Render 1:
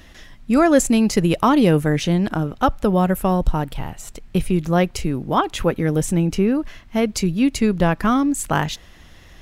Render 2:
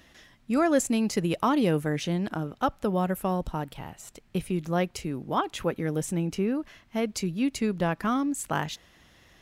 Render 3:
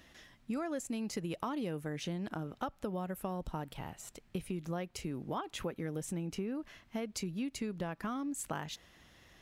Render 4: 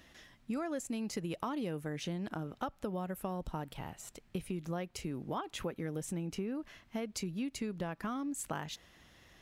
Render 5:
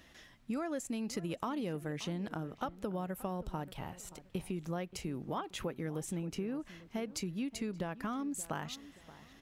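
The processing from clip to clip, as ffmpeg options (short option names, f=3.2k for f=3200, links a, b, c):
-af "highpass=f=130:p=1,volume=-8dB"
-af "acompressor=threshold=-31dB:ratio=6,volume=-3.5dB"
-af anull
-filter_complex "[0:a]asplit=2[a][b];[b]adelay=577,lowpass=f=1.7k:p=1,volume=-16.5dB,asplit=2[c][d];[d]adelay=577,lowpass=f=1.7k:p=1,volume=0.37,asplit=2[e][f];[f]adelay=577,lowpass=f=1.7k:p=1,volume=0.37[g];[a][c][e][g]amix=inputs=4:normalize=0"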